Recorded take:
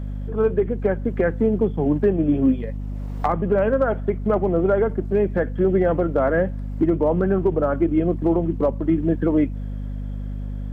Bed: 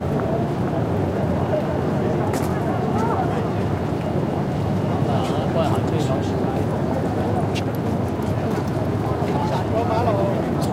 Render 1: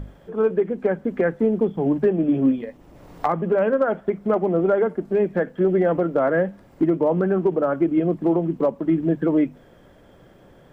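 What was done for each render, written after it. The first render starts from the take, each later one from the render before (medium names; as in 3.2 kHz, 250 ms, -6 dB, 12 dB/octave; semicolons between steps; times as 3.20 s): hum notches 50/100/150/200/250 Hz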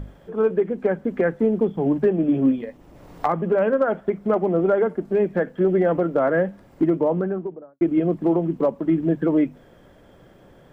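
6.91–7.81 s: studio fade out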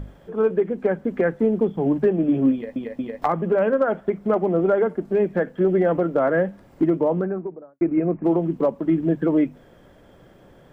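2.53 s: stutter in place 0.23 s, 3 plays; 7.25–8.25 s: elliptic low-pass 2.5 kHz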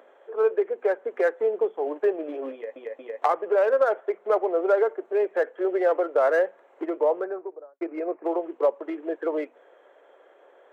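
local Wiener filter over 9 samples; steep high-pass 410 Hz 36 dB/octave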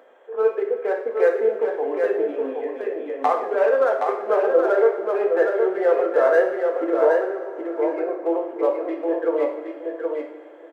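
on a send: feedback delay 770 ms, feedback 15%, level -4.5 dB; on the sum: two-slope reverb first 0.6 s, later 4.4 s, from -18 dB, DRR 1 dB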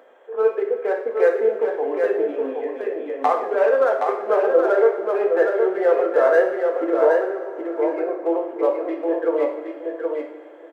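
trim +1 dB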